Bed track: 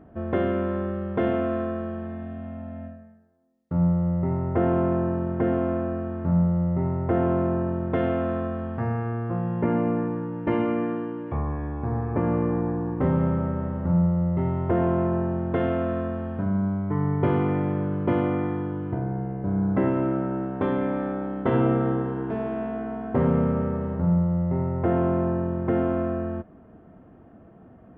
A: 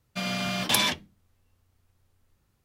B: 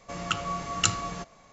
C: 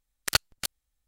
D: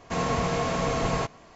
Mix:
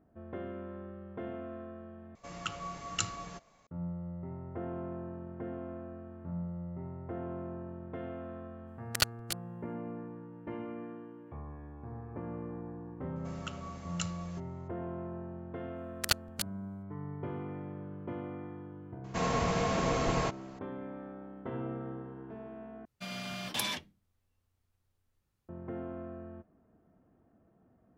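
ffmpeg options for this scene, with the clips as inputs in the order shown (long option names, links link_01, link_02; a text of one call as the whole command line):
ffmpeg -i bed.wav -i cue0.wav -i cue1.wav -i cue2.wav -i cue3.wav -filter_complex "[2:a]asplit=2[link_01][link_02];[3:a]asplit=2[link_03][link_04];[0:a]volume=-17dB[link_05];[link_04]acontrast=88[link_06];[link_05]asplit=3[link_07][link_08][link_09];[link_07]atrim=end=2.154[link_10];[link_01]atrim=end=1.52,asetpts=PTS-STARTPTS,volume=-9dB[link_11];[link_08]atrim=start=3.666:end=22.854[link_12];[1:a]atrim=end=2.64,asetpts=PTS-STARTPTS,volume=-10.5dB[link_13];[link_09]atrim=start=25.486[link_14];[link_03]atrim=end=1.07,asetpts=PTS-STARTPTS,volume=-5dB,afade=type=in:duration=0.004:curve=hsin,afade=type=out:start_time=1.066:duration=0.004:curve=hsin,adelay=8670[link_15];[link_02]atrim=end=1.52,asetpts=PTS-STARTPTS,volume=-14.5dB,afade=type=in:duration=0.004:curve=hsin,afade=type=out:start_time=1.516:duration=0.004:curve=hsin,adelay=580356S[link_16];[link_06]atrim=end=1.07,asetpts=PTS-STARTPTS,volume=-11dB,afade=type=in:duration=0.004:curve=hsin,afade=type=out:start_time=1.066:duration=0.004:curve=hsin,adelay=15760[link_17];[4:a]atrim=end=1.55,asetpts=PTS-STARTPTS,volume=-4dB,afade=type=in:duration=0.004:curve=hsin,afade=type=out:start_time=1.546:duration=0.004:curve=hsin,adelay=19040[link_18];[link_10][link_11]acrossfade=duration=0.004:curve1=hsin:curve2=hsin[link_19];[link_19][link_12]acrossfade=duration=0.004:curve1=hsin:curve2=hsin[link_20];[link_20][link_13]acrossfade=duration=0.004:curve1=hsin:curve2=hsin[link_21];[link_21][link_14]acrossfade=duration=0.004:curve1=hsin:curve2=hsin[link_22];[link_22][link_15][link_16][link_17][link_18]amix=inputs=5:normalize=0" out.wav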